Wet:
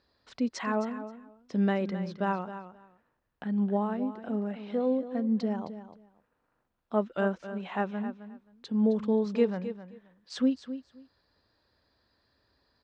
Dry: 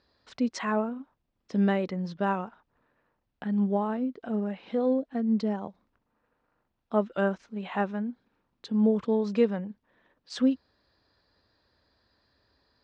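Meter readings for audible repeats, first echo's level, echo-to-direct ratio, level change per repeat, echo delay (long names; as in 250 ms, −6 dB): 2, −12.0 dB, −12.0 dB, −15.5 dB, 264 ms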